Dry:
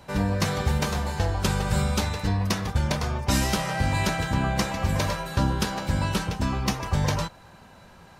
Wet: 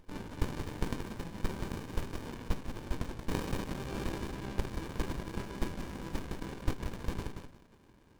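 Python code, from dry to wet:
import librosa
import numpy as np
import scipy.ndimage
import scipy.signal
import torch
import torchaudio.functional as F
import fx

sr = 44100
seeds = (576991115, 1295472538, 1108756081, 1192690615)

p1 = scipy.signal.sosfilt(scipy.signal.butter(2, 1100.0, 'highpass', fs=sr, output='sos'), x)
p2 = p1 + fx.echo_feedback(p1, sr, ms=179, feedback_pct=22, wet_db=-6.5, dry=0)
y = fx.running_max(p2, sr, window=65)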